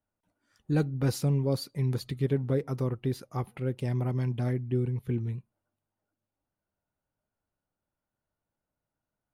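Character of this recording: noise floor -89 dBFS; spectral tilt -8.0 dB/octave

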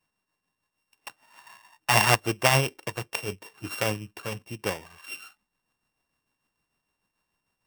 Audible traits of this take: a buzz of ramps at a fixed pitch in blocks of 16 samples; tremolo triangle 6.7 Hz, depth 55%

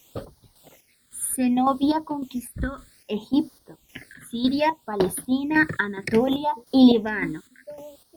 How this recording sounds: a quantiser's noise floor 10-bit, dither triangular; chopped level 1.8 Hz, depth 60%, duty 45%; phasing stages 8, 0.64 Hz, lowest notch 760–2500 Hz; Opus

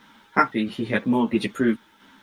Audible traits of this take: tremolo saw down 1.5 Hz, depth 50%; a quantiser's noise floor 12-bit, dither none; a shimmering, thickened sound

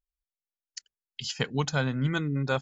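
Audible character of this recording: noise floor -95 dBFS; spectral tilt -5.5 dB/octave

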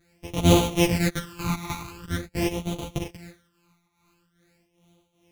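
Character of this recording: a buzz of ramps at a fixed pitch in blocks of 256 samples; phasing stages 12, 0.45 Hz, lowest notch 520–1700 Hz; tremolo triangle 2.5 Hz, depth 80%; a shimmering, thickened sound

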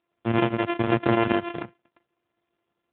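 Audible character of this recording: a buzz of ramps at a fixed pitch in blocks of 128 samples; chopped level 12 Hz, depth 60%, duty 85%; AMR-NB

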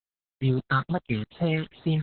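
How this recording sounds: a quantiser's noise floor 6-bit, dither none; phasing stages 8, 2.3 Hz, lowest notch 680–2500 Hz; Opus

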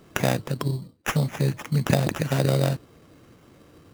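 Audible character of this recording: aliases and images of a low sample rate 4.3 kHz, jitter 0%

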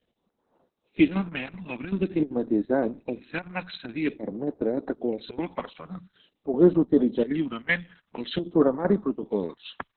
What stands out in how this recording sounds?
chopped level 2.6 Hz, depth 65%, duty 80%; phasing stages 2, 0.48 Hz, lowest notch 360–2600 Hz; Opus

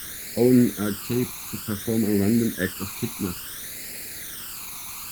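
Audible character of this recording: a quantiser's noise floor 6-bit, dither triangular; phasing stages 12, 0.57 Hz, lowest notch 540–1100 Hz; Opus

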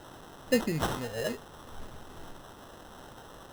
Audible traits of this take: a quantiser's noise floor 8-bit, dither triangular; phasing stages 12, 0.59 Hz, lowest notch 300–1400 Hz; aliases and images of a low sample rate 2.3 kHz, jitter 0%

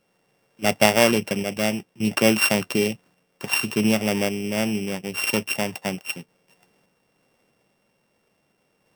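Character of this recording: a buzz of ramps at a fixed pitch in blocks of 16 samples; random-step tremolo

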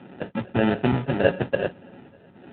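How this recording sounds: a buzz of ramps at a fixed pitch in blocks of 16 samples; phasing stages 12, 1.7 Hz, lowest notch 290–1600 Hz; aliases and images of a low sample rate 1.1 kHz, jitter 0%; AMR-NB

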